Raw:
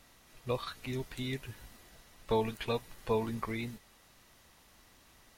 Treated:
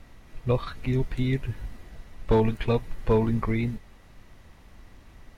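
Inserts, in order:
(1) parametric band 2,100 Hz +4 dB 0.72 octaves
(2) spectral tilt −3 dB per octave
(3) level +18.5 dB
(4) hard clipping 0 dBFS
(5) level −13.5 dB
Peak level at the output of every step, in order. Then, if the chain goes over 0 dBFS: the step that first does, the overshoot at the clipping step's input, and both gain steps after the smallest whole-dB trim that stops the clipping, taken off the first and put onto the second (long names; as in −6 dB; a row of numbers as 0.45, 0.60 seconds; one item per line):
−18.0, −13.0, +5.5, 0.0, −13.5 dBFS
step 3, 5.5 dB
step 3 +12.5 dB, step 5 −7.5 dB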